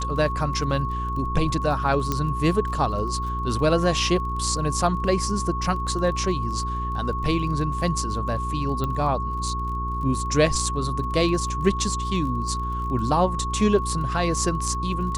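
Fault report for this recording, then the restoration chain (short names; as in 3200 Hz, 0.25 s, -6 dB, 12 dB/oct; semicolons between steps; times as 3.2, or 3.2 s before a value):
crackle 25/s -33 dBFS
hum 60 Hz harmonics 7 -29 dBFS
tone 1100 Hz -28 dBFS
2.12 pop -10 dBFS
8.84 pop -15 dBFS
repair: de-click; de-hum 60 Hz, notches 7; notch 1100 Hz, Q 30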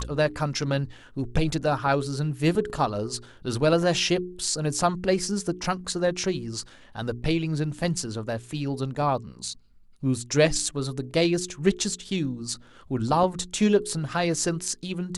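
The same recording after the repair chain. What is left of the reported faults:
none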